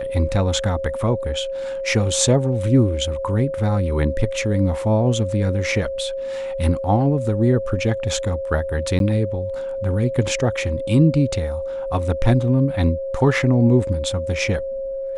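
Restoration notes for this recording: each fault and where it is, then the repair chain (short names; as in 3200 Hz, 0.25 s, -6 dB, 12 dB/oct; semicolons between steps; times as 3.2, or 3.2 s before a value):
tone 540 Hz -24 dBFS
8.99–9 gap 12 ms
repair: notch 540 Hz, Q 30; interpolate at 8.99, 12 ms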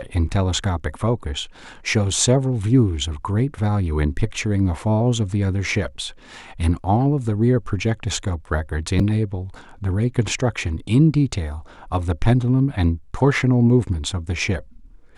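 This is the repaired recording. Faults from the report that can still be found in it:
none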